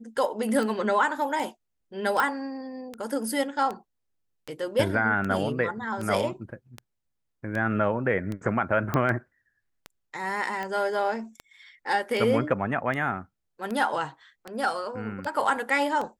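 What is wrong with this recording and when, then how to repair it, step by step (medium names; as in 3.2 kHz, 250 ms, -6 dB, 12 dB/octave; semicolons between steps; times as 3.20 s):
tick 78 rpm
2.20 s: pop
8.94 s: pop -13 dBFS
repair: de-click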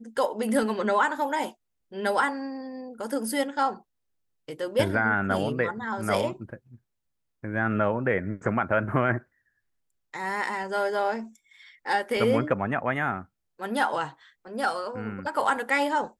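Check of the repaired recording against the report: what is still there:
8.94 s: pop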